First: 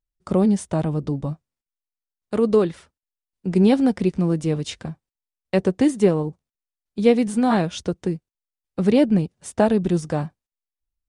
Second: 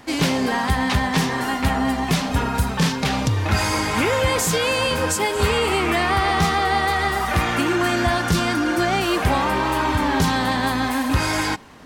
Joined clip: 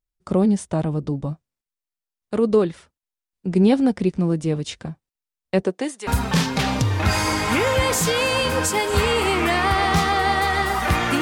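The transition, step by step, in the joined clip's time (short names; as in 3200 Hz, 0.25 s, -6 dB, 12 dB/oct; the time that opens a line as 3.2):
first
5.62–6.07 HPF 200 Hz -> 1200 Hz
6.07 switch to second from 2.53 s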